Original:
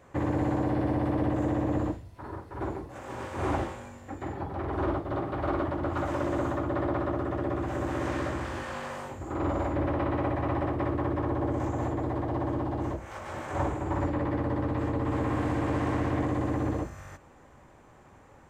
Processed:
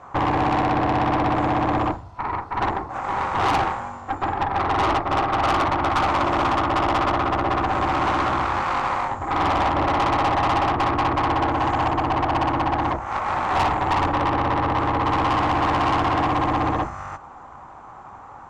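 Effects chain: low-pass 7.1 kHz 24 dB/octave; high-order bell 1 kHz +13.5 dB 1.2 oct; valve stage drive 25 dB, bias 0.65; trim +8.5 dB

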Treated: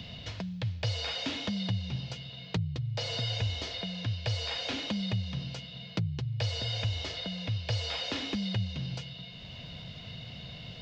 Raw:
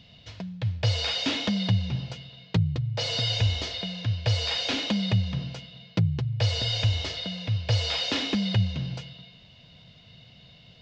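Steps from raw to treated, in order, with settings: three bands compressed up and down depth 70%; trim -6.5 dB

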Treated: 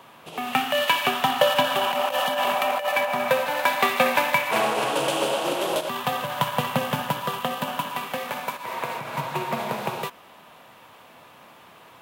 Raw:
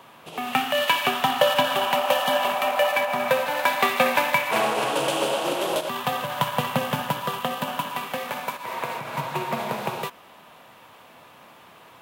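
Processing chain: 1.84–2.89 s: compressor with a negative ratio -23 dBFS, ratio -0.5

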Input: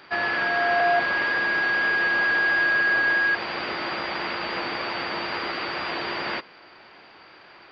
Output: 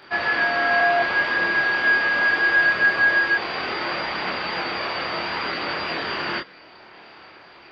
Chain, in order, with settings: chorus voices 2, 0.35 Hz, delay 26 ms, depth 1.9 ms; trim +5.5 dB

